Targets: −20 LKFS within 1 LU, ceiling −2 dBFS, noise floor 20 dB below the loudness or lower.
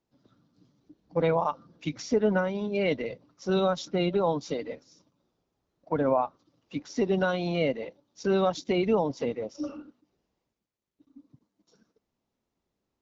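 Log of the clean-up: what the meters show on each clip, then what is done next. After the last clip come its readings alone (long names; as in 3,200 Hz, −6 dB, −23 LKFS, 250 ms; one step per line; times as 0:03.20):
integrated loudness −28.5 LKFS; sample peak −13.0 dBFS; target loudness −20.0 LKFS
→ level +8.5 dB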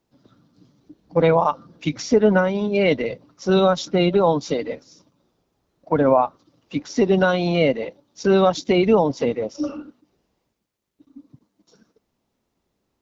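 integrated loudness −20.0 LKFS; sample peak −4.5 dBFS; background noise floor −75 dBFS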